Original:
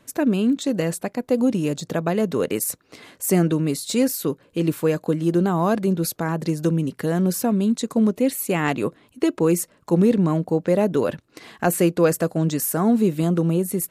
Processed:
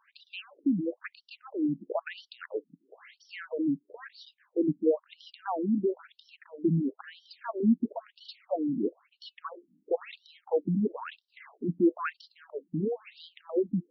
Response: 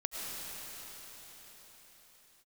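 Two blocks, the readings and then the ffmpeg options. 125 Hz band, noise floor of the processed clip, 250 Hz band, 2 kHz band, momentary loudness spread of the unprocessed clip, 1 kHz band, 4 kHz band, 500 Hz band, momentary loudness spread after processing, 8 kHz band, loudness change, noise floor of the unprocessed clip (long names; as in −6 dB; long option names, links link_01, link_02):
−14.5 dB, −79 dBFS, −10.5 dB, −11.0 dB, 6 LU, −11.5 dB, −12.5 dB, −10.5 dB, 21 LU, below −40 dB, −9.5 dB, −59 dBFS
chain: -filter_complex "[0:a]acrossover=split=2600[link_01][link_02];[link_02]acompressor=threshold=-36dB:ratio=4:attack=1:release=60[link_03];[link_01][link_03]amix=inputs=2:normalize=0,afftfilt=real='re*between(b*sr/1024,220*pow(4200/220,0.5+0.5*sin(2*PI*1*pts/sr))/1.41,220*pow(4200/220,0.5+0.5*sin(2*PI*1*pts/sr))*1.41)':imag='im*between(b*sr/1024,220*pow(4200/220,0.5+0.5*sin(2*PI*1*pts/sr))/1.41,220*pow(4200/220,0.5+0.5*sin(2*PI*1*pts/sr))*1.41)':win_size=1024:overlap=0.75,volume=-2dB"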